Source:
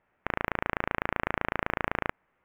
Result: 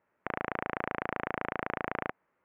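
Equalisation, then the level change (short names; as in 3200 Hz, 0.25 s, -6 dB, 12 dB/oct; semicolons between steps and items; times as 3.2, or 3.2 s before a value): HPF 220 Hz 6 dB/oct; LPF 1300 Hz 6 dB/oct; notch 750 Hz, Q 12; 0.0 dB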